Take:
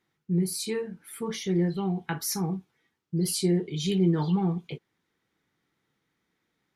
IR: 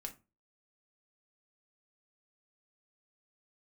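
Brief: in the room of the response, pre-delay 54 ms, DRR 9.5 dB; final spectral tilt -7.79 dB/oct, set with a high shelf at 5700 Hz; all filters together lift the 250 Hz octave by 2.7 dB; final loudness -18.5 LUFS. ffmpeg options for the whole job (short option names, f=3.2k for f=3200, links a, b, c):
-filter_complex "[0:a]equalizer=f=250:t=o:g=5,highshelf=f=5.7k:g=-5,asplit=2[a][b];[1:a]atrim=start_sample=2205,adelay=54[c];[b][c]afir=irnorm=-1:irlink=0,volume=-6.5dB[d];[a][d]amix=inputs=2:normalize=0,volume=7dB"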